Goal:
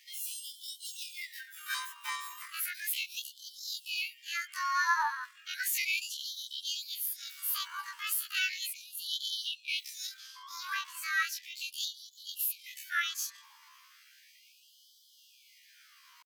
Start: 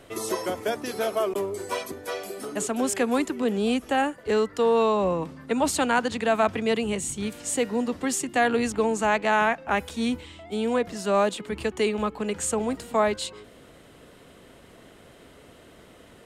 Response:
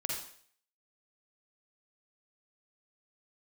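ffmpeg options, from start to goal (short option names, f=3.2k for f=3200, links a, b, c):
-af "afftfilt=real='re':imag='-im':win_size=2048:overlap=0.75,asetrate=70004,aresample=44100,atempo=0.629961,afftfilt=real='re*gte(b*sr/1024,860*pow(3000/860,0.5+0.5*sin(2*PI*0.35*pts/sr)))':imag='im*gte(b*sr/1024,860*pow(3000/860,0.5+0.5*sin(2*PI*0.35*pts/sr)))':win_size=1024:overlap=0.75,volume=1.5dB"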